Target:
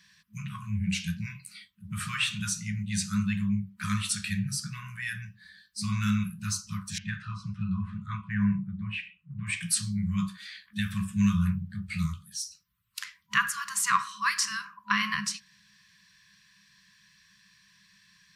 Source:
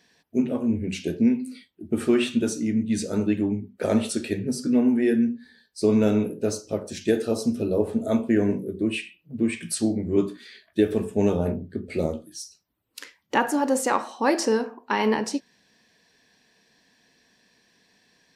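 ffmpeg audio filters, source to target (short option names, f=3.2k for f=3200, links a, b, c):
-filter_complex "[0:a]asettb=1/sr,asplit=3[a][b][c];[a]atrim=end=6.984[d];[b]atrim=start=6.98:end=9.47,asetpts=PTS-STARTPTS,afade=t=in:d=0.004:c=qsin,afade=t=out:st=2.486:d=0.004:c=qsin,lowpass=1.9k[e];[c]atrim=start=9.466[f];[d][e]acrossfade=d=0.004:c1=hsin:c2=qsin[g];[g][f]acrossfade=d=0.004:c1=qsin:c2=hsin,afftfilt=real='re*(1-between(b*sr/4096,210,990))':imag='im*(1-between(b*sr/4096,210,990))':win_size=4096:overlap=0.75,volume=2.5dB"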